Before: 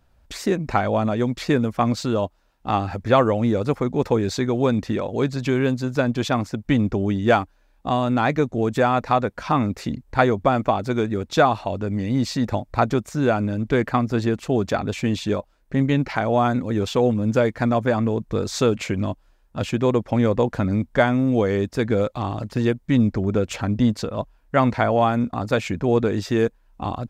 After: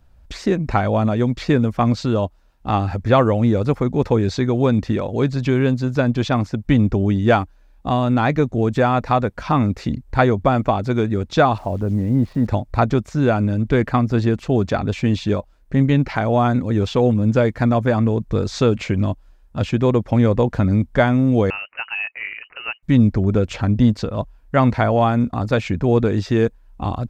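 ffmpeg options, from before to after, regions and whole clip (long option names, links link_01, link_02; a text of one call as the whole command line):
ffmpeg -i in.wav -filter_complex "[0:a]asettb=1/sr,asplit=3[link_01][link_02][link_03];[link_01]atrim=end=11.584[link_04];[link_02]atrim=start=11.58:end=12.47,asetpts=PTS-STARTPTS,afade=type=in:duration=0.004:curve=qsin,afade=type=out:start_time=0.886:duration=0.004:curve=qsin,lowpass=1200,acrusher=bits=9:dc=4:mix=0:aa=0.000001[link_05];[link_03]atrim=start=12.466[link_06];[link_04][link_05]acrossfade=duration=0.004:curve1=hsin:curve2=qsin[link_07];[link_07][link_06]acrossfade=duration=0.004:curve1=qsin:curve2=hsin,asettb=1/sr,asplit=3[link_08][link_09][link_10];[link_08]atrim=end=21.504[link_11];[link_09]atrim=start=21.5:end=22.83,asetpts=PTS-STARTPTS,afade=type=in:duration=0.004:curve=qsin,afade=type=out:start_time=1.326:duration=0.004:curve=qsin,highpass=620,lowpass=frequency=2600:width_type=q:width=0.5098,lowpass=frequency=2600:width_type=q:width=0.6013,lowpass=frequency=2600:width_type=q:width=0.9,lowpass=frequency=2600:width_type=q:width=2.563,afreqshift=-3100[link_12];[link_10]atrim=start=22.826[link_13];[link_11][link_12]acrossfade=duration=0.004:curve1=hsin:curve2=qsin[link_14];[link_14][link_13]acrossfade=duration=0.004:curve1=qsin:curve2=hsin,acrossover=split=6600[link_15][link_16];[link_16]acompressor=threshold=-59dB:ratio=4:attack=1:release=60[link_17];[link_15][link_17]amix=inputs=2:normalize=0,lowshelf=frequency=140:gain=9,volume=1dB" out.wav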